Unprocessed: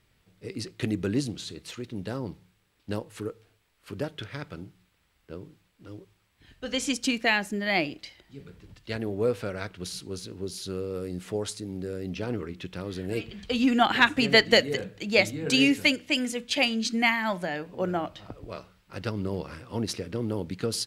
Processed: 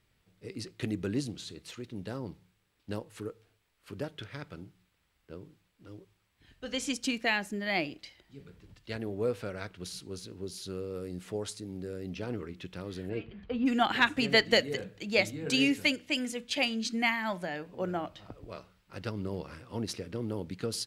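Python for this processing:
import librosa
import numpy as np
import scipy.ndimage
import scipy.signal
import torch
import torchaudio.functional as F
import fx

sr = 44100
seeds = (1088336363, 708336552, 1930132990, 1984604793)

y = fx.lowpass(x, sr, hz=fx.line((13.08, 2700.0), (13.65, 1300.0)), slope=12, at=(13.08, 13.65), fade=0.02)
y = y * librosa.db_to_amplitude(-5.0)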